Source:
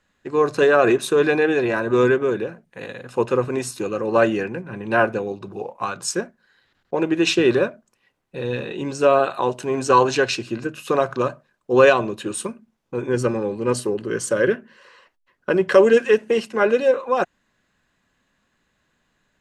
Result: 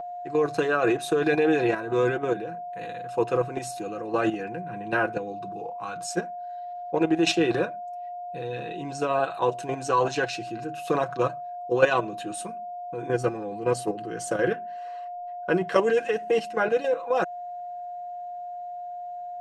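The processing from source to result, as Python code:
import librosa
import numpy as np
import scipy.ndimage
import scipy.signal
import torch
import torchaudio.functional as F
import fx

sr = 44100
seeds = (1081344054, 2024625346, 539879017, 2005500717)

y = x + 10.0 ** (-23.0 / 20.0) * np.sin(2.0 * np.pi * 710.0 * np.arange(len(x)) / sr)
y = fx.level_steps(y, sr, step_db=10)
y = y + 0.59 * np.pad(y, (int(6.2 * sr / 1000.0), 0))[:len(y)]
y = F.gain(torch.from_numpy(y), -2.5).numpy()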